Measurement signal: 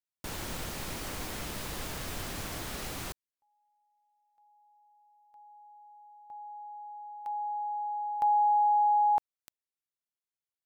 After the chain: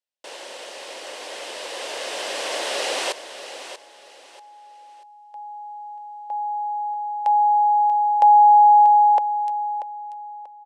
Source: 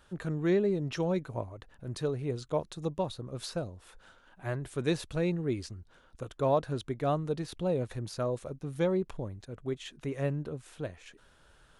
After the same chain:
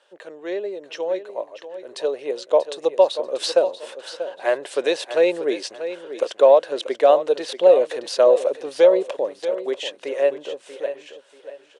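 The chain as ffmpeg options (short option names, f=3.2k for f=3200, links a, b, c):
-filter_complex "[0:a]dynaudnorm=f=570:g=9:m=16dB,alimiter=limit=-10dB:level=0:latency=1:release=428,highpass=f=420:w=0.5412,highpass=f=420:w=1.3066,equalizer=f=550:t=q:w=4:g=8,equalizer=f=1.3k:t=q:w=4:g=-7,equalizer=f=2.9k:t=q:w=4:g=4,equalizer=f=6.8k:t=q:w=4:g=-4,lowpass=f=8.6k:w=0.5412,lowpass=f=8.6k:w=1.3066,bandreject=f=2.3k:w=29,asplit=2[a][b];[b]aecho=0:1:637|1274|1911:0.266|0.0772|0.0224[c];[a][c]amix=inputs=2:normalize=0,volume=2.5dB"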